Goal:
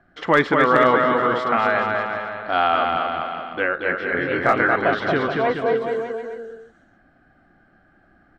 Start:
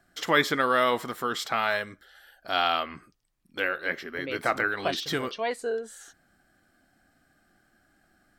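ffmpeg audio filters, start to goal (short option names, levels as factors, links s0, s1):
-filter_complex "[0:a]aecho=1:1:230|425.5|591.7|732.9|853:0.631|0.398|0.251|0.158|0.1,acontrast=58,lowpass=1800,volume=2.37,asoftclip=hard,volume=0.422,asettb=1/sr,asplit=3[s0][s1][s2];[s0]atrim=end=3.974[s3];[s1]atrim=start=3.97:end=4.76,asetpts=PTS-STARTPTS,afade=t=in:d=0.004:c=qsin,afade=t=out:st=0.786:d=0.004:c=qsin,asplit=2[s4][s5];[s5]adelay=23,volume=0.708[s6];[s4][s6]amix=inputs=2:normalize=0,atrim=end_sample=34839[s7];[s2]atrim=start=4.756[s8];[s3][s7]acrossfade=d=0.004:c1=hsin:c2=qsin[s9];[s9][s8]acrossfade=d=0.004:c1=qsin:c2=hsin,volume=1.19"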